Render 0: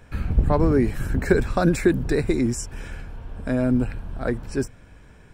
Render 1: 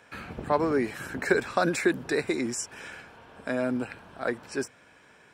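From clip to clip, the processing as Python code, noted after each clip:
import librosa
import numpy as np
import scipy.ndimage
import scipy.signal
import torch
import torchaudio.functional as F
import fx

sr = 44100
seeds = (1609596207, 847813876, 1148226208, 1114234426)

y = fx.weighting(x, sr, curve='A')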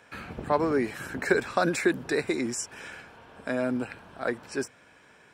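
y = x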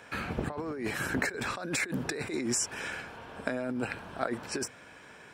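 y = fx.over_compress(x, sr, threshold_db=-33.0, ratio=-1.0)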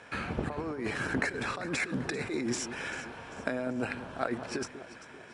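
y = scipy.signal.medfilt(x, 5)
y = fx.brickwall_lowpass(y, sr, high_hz=11000.0)
y = fx.echo_alternate(y, sr, ms=196, hz=1100.0, feedback_pct=66, wet_db=-11.0)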